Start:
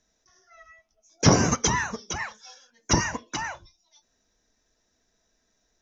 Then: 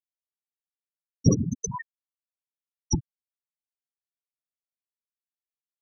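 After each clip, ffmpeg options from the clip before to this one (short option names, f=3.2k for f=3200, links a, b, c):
-af "equalizer=f=760:w=0.64:g=-2.5,aeval=exprs='val(0)+0.00891*(sin(2*PI*60*n/s)+sin(2*PI*2*60*n/s)/2+sin(2*PI*3*60*n/s)/3+sin(2*PI*4*60*n/s)/4+sin(2*PI*5*60*n/s)/5)':c=same,afftfilt=real='re*gte(hypot(re,im),0.398)':imag='im*gte(hypot(re,im),0.398)':win_size=1024:overlap=0.75"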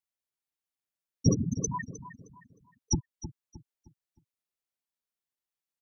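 -filter_complex "[0:a]asplit=2[a][b];[b]acompressor=threshold=-31dB:ratio=6,volume=3dB[c];[a][c]amix=inputs=2:normalize=0,asplit=2[d][e];[e]adelay=310,lowpass=f=3.7k:p=1,volume=-12dB,asplit=2[f][g];[g]adelay=310,lowpass=f=3.7k:p=1,volume=0.36,asplit=2[h][i];[i]adelay=310,lowpass=f=3.7k:p=1,volume=0.36,asplit=2[j][k];[k]adelay=310,lowpass=f=3.7k:p=1,volume=0.36[l];[d][f][h][j][l]amix=inputs=5:normalize=0,volume=-6dB"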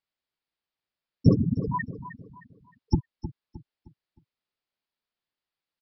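-af "aresample=11025,aresample=44100,volume=5.5dB"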